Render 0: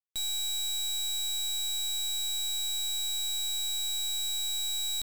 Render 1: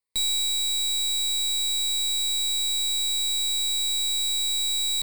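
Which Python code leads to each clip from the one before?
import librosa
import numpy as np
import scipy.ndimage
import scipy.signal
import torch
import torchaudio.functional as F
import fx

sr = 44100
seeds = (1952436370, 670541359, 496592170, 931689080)

y = fx.ripple_eq(x, sr, per_octave=0.94, db=13)
y = fx.rider(y, sr, range_db=10, speed_s=0.5)
y = y * 10.0 ** (4.0 / 20.0)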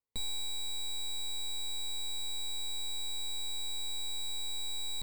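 y = fx.tilt_shelf(x, sr, db=8.0, hz=1300.0)
y = y * 10.0 ** (-7.0 / 20.0)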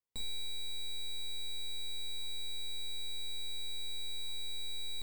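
y = fx.room_early_taps(x, sr, ms=(24, 44), db=(-12.0, -6.0))
y = y * 10.0 ** (-4.5 / 20.0)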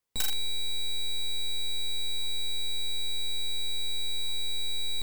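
y = (np.mod(10.0 ** (29.5 / 20.0) * x + 1.0, 2.0) - 1.0) / 10.0 ** (29.5 / 20.0)
y = y * 10.0 ** (8.5 / 20.0)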